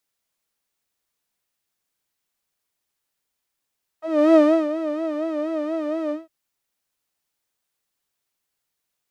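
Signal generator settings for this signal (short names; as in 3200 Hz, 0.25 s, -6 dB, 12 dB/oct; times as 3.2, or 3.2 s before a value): synth patch with vibrato D#5, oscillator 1 saw, oscillator 2 saw, sub -11 dB, filter bandpass, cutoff 130 Hz, Q 1.9, filter envelope 3 oct, filter decay 0.06 s, filter sustain 50%, attack 0.325 s, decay 0.34 s, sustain -13 dB, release 0.17 s, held 2.09 s, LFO 4.2 Hz, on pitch 90 cents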